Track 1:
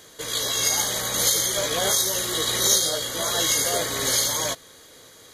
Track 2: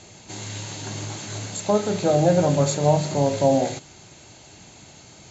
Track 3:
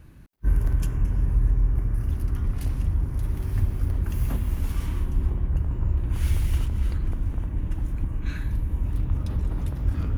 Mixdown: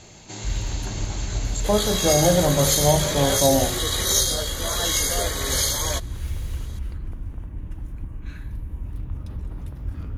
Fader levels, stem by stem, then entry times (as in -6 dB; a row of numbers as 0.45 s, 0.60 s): -1.0 dB, -0.5 dB, -6.0 dB; 1.45 s, 0.00 s, 0.00 s